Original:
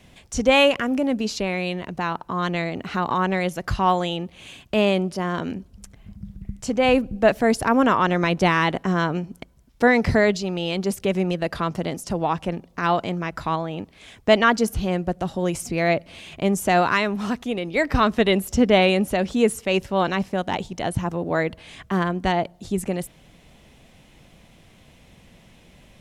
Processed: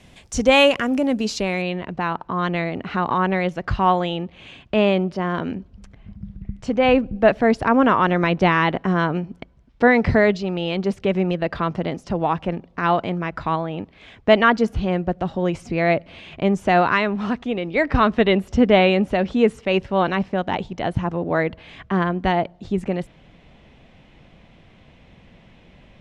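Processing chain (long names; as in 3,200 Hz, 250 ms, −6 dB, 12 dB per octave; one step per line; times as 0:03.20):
low-pass filter 11,000 Hz 12 dB per octave, from 0:01.62 3,200 Hz
level +2 dB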